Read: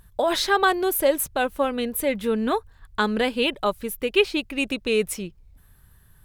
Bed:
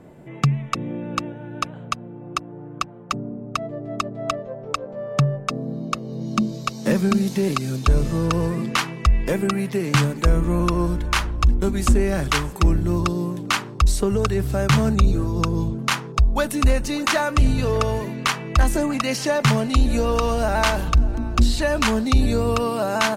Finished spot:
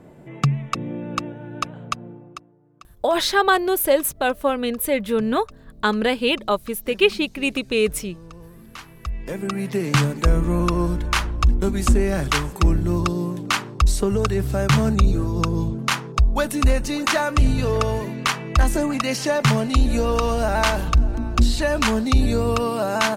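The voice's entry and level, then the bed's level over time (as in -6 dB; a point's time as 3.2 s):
2.85 s, +2.5 dB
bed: 2.1 s -0.5 dB
2.59 s -21.5 dB
8.57 s -21.5 dB
9.72 s 0 dB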